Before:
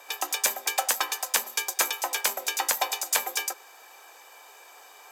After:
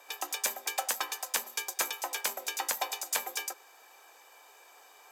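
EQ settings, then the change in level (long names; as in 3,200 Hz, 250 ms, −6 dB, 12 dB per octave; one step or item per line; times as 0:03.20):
low-shelf EQ 250 Hz +4.5 dB
−6.5 dB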